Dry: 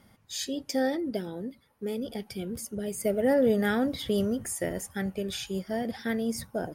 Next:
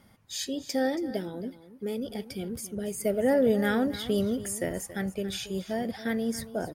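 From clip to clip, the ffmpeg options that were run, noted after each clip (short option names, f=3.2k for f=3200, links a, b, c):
-af "aecho=1:1:278:0.178"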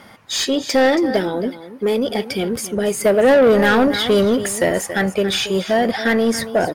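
-filter_complex "[0:a]asplit=2[a][b];[b]highpass=f=720:p=1,volume=20dB,asoftclip=type=tanh:threshold=-13dB[c];[a][c]amix=inputs=2:normalize=0,lowpass=f=2.7k:p=1,volume=-6dB,volume=8dB"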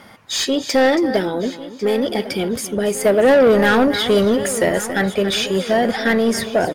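-filter_complex "[0:a]asplit=2[a][b];[b]adelay=1099,lowpass=f=4.8k:p=1,volume=-15dB,asplit=2[c][d];[d]adelay=1099,lowpass=f=4.8k:p=1,volume=0.5,asplit=2[e][f];[f]adelay=1099,lowpass=f=4.8k:p=1,volume=0.5,asplit=2[g][h];[h]adelay=1099,lowpass=f=4.8k:p=1,volume=0.5,asplit=2[i][j];[j]adelay=1099,lowpass=f=4.8k:p=1,volume=0.5[k];[a][c][e][g][i][k]amix=inputs=6:normalize=0"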